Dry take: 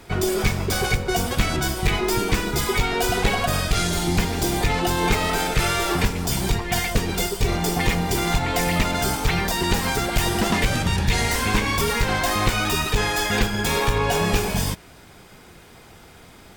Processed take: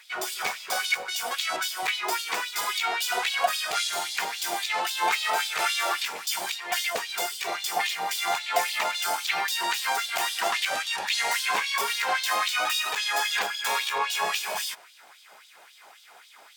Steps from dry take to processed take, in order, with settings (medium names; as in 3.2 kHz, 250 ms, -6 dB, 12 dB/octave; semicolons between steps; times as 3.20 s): LFO high-pass sine 3.7 Hz 660–3800 Hz; trim -4.5 dB